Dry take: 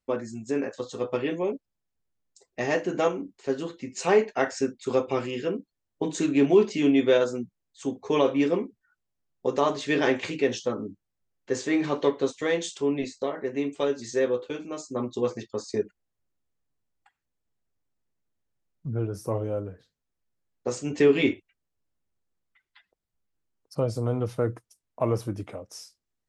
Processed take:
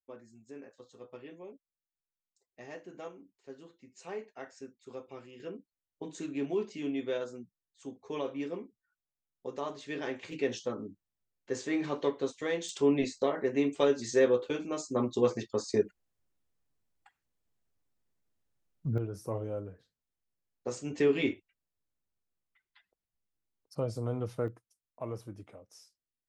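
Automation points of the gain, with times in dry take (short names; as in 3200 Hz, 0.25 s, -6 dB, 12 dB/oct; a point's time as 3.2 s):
-20 dB
from 5.4 s -13.5 dB
from 10.32 s -7 dB
from 12.69 s 0 dB
from 18.98 s -7 dB
from 24.48 s -13.5 dB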